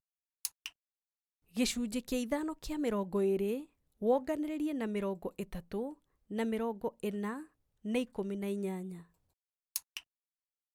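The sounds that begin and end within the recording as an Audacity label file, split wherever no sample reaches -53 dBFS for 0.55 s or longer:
1.550000	9.030000	sound
9.750000	10.000000	sound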